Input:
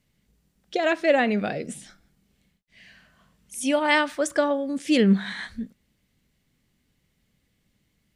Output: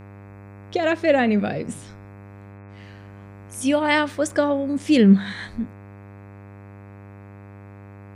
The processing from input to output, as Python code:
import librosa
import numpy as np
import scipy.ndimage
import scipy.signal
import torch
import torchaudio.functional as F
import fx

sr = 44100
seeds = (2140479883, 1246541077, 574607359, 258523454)

y = fx.low_shelf(x, sr, hz=330.0, db=7.5)
y = fx.dmg_buzz(y, sr, base_hz=100.0, harmonics=26, level_db=-42.0, tilt_db=-6, odd_only=False)